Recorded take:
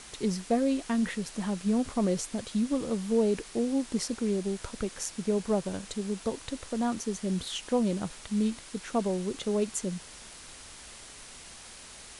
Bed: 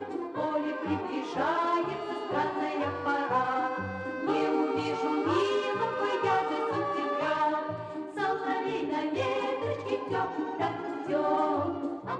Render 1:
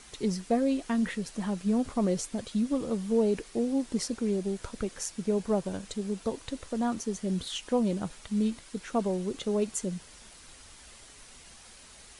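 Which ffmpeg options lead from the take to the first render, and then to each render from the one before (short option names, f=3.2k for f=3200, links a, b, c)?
-af "afftdn=nr=6:nf=-48"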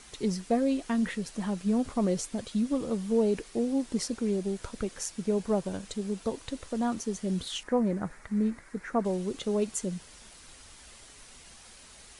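-filter_complex "[0:a]asettb=1/sr,asplit=3[a][b][c];[a]atrim=end=7.634[d];[b]atrim=start=7.63:end=9.05,asetpts=PTS-STARTPTS,afade=t=in:d=0.004:c=qsin,afade=t=out:st=1.416:d=0.004:c=qsin,highshelf=f=2.4k:t=q:w=3:g=-8[e];[c]atrim=start=9.046[f];[d][e]acrossfade=d=0.004:c1=hsin:c2=qsin[g];[g][f]acrossfade=d=0.004:c1=qsin:c2=hsin"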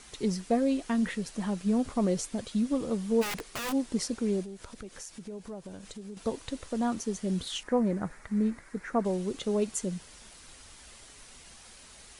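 -filter_complex "[0:a]asplit=3[a][b][c];[a]afade=t=out:st=3.21:d=0.02[d];[b]aeval=exprs='(mod(26.6*val(0)+1,2)-1)/26.6':c=same,afade=t=in:st=3.21:d=0.02,afade=t=out:st=3.71:d=0.02[e];[c]afade=t=in:st=3.71:d=0.02[f];[d][e][f]amix=inputs=3:normalize=0,asettb=1/sr,asplit=3[g][h][i];[g]atrim=end=4.444[j];[h]atrim=start=4.44:end=6.17,asetpts=PTS-STARTPTS,afade=t=in:d=0.004:c=qsin,afade=t=out:st=1.726:d=0.004:c=qsin,acompressor=threshold=-42dB:ratio=3:attack=3.2:release=140:knee=1:detection=peak[k];[i]atrim=start=6.166[l];[j][k]acrossfade=d=0.004:c1=hsin:c2=qsin[m];[m][l]acrossfade=d=0.004:c1=qsin:c2=hsin"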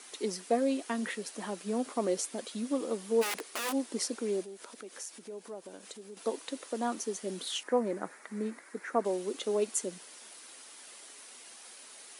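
-af "highpass=f=280:w=0.5412,highpass=f=280:w=1.3066,equalizer=f=10k:t=o:w=0.38:g=5"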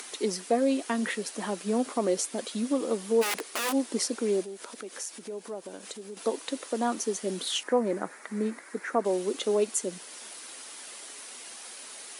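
-filter_complex "[0:a]asplit=2[a][b];[b]alimiter=limit=-24dB:level=0:latency=1:release=188,volume=-1dB[c];[a][c]amix=inputs=2:normalize=0,acompressor=mode=upward:threshold=-39dB:ratio=2.5"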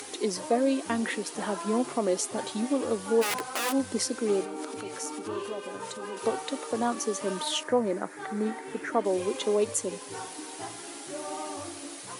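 -filter_complex "[1:a]volume=-10dB[a];[0:a][a]amix=inputs=2:normalize=0"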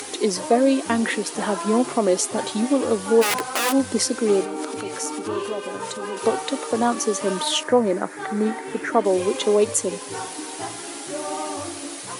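-af "volume=7.5dB"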